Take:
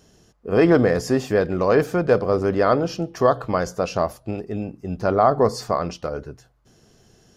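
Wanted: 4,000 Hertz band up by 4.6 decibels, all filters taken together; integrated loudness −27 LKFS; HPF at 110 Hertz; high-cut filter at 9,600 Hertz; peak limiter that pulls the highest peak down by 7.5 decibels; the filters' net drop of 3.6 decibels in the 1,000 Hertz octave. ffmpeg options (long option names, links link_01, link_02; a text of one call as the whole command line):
ffmpeg -i in.wav -af "highpass=110,lowpass=9600,equalizer=frequency=1000:width_type=o:gain=-5.5,equalizer=frequency=4000:width_type=o:gain=6.5,volume=-1.5dB,alimiter=limit=-14dB:level=0:latency=1" out.wav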